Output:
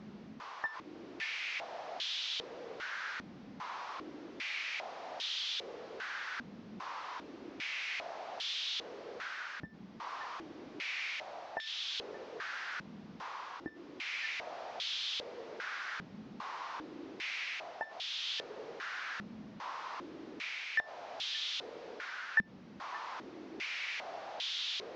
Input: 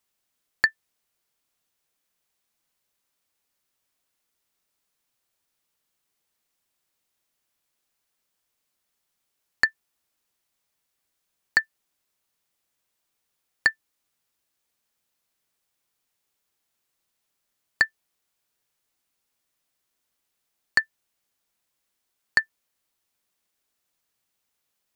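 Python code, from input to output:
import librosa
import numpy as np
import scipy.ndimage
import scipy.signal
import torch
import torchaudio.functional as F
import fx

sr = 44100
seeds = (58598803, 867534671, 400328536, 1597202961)

p1 = fx.delta_mod(x, sr, bps=32000, step_db=-31.0)
p2 = fx.rider(p1, sr, range_db=10, speed_s=0.5)
p3 = p2 + fx.echo_single(p2, sr, ms=574, db=-12.0, dry=0)
p4 = fx.filter_held_bandpass(p3, sr, hz=2.5, low_hz=210.0, high_hz=3400.0)
y = F.gain(torch.from_numpy(p4), 6.5).numpy()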